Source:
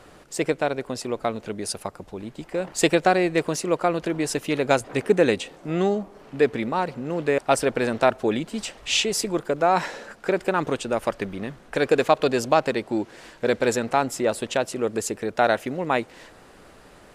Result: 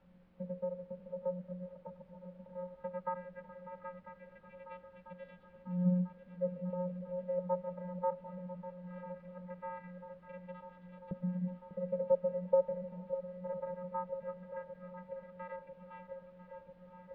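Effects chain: median filter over 15 samples; tilt EQ -2 dB/octave; hum notches 60/120/180/240/300/360/420/480/540 Hz; vocoder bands 16, square 180 Hz; LFO band-pass saw up 0.18 Hz 280–4000 Hz; added noise pink -64 dBFS; distance through air 420 m; shuffle delay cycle 995 ms, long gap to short 1.5:1, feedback 69%, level -13 dB; trim -4.5 dB

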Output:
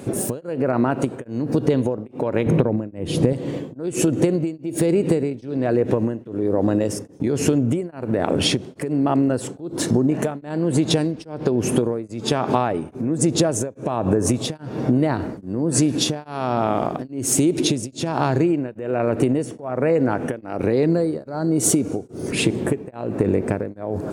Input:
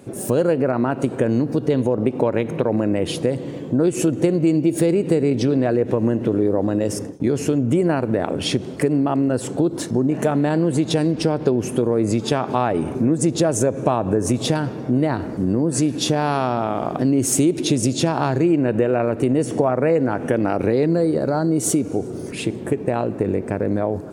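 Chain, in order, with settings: 2.46–3.33 s: bass shelf 370 Hz +11 dB; compression, threshold -22 dBFS, peak gain reduction 13 dB; tremolo of two beating tones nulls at 1.2 Hz; trim +8 dB

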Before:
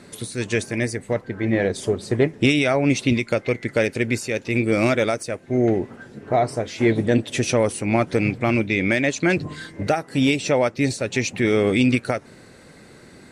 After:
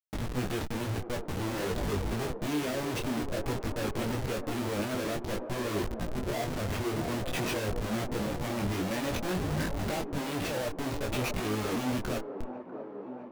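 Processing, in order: distance through air 120 m; in parallel at +1 dB: compression 6:1, threshold -31 dBFS, peak gain reduction 17 dB; on the sum: dynamic bell 2.1 kHz, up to -4 dB, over -34 dBFS, Q 3.2; Schmitt trigger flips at -29 dBFS; on a send: feedback echo behind a band-pass 645 ms, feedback 69%, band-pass 500 Hz, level -7 dB; on the sum: detune thickener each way 18 cents; trim -8 dB

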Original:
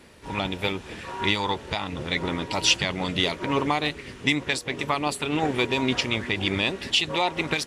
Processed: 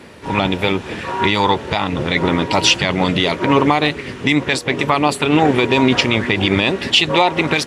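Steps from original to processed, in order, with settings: high-pass 83 Hz; treble shelf 4.1 kHz -8 dB; loudness maximiser +13.5 dB; trim -1 dB

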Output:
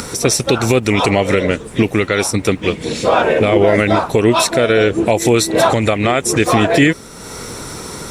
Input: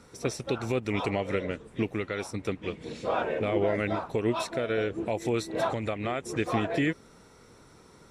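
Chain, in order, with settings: treble shelf 5.4 kHz +11.5 dB; upward compressor, threshold -36 dBFS; loudness maximiser +18 dB; trim -1 dB

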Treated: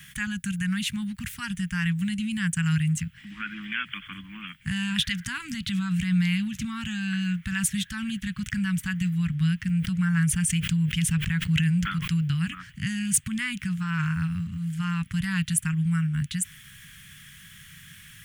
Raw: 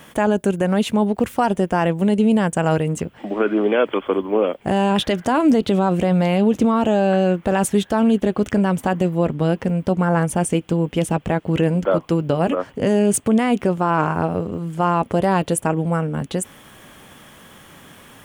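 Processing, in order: Chebyshev band-stop 160–1700 Hz, order 3; 9.63–12.40 s: decay stretcher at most 64 dB/s

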